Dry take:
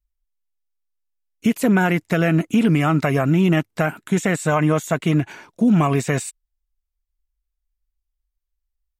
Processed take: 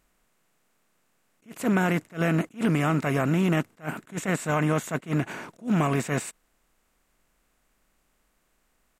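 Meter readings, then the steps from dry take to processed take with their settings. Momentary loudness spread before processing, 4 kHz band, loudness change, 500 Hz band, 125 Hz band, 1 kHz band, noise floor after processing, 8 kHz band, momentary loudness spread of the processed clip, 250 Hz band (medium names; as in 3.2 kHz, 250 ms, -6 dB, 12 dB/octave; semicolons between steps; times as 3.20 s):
7 LU, -6.5 dB, -7.0 dB, -7.0 dB, -7.0 dB, -6.0 dB, -71 dBFS, -5.5 dB, 11 LU, -8.0 dB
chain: spectral levelling over time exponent 0.6; attacks held to a fixed rise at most 270 dB/s; trim -8.5 dB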